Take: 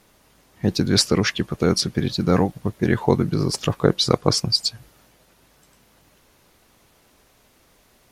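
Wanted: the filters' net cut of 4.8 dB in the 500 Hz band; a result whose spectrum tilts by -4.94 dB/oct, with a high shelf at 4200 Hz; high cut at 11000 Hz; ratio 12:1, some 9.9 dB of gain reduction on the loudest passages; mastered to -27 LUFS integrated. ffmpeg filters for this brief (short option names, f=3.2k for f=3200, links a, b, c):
-af "lowpass=11k,equalizer=f=500:t=o:g=-6,highshelf=f=4.2k:g=-4.5,acompressor=threshold=-23dB:ratio=12,volume=2.5dB"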